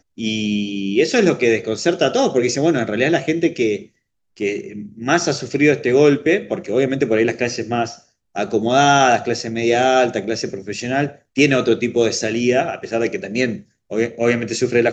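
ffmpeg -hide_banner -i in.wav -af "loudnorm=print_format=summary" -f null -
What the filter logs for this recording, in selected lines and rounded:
Input Integrated:    -18.4 LUFS
Input True Peak:      -1.7 dBTP
Input LRA:             2.1 LU
Input Threshold:     -28.6 LUFS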